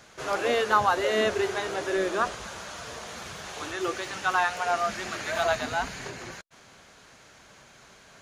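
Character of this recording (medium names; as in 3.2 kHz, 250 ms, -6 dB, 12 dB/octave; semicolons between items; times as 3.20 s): noise floor -54 dBFS; spectral tilt -3.0 dB/octave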